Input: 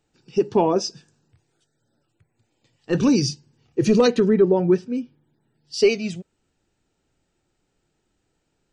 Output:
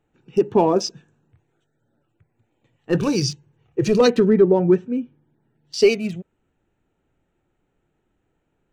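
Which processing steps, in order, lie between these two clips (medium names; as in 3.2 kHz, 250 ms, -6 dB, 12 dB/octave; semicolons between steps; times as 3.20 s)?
local Wiener filter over 9 samples; 2.98–4.01 s: peaking EQ 250 Hz -13.5 dB 0.36 oct; trim +2 dB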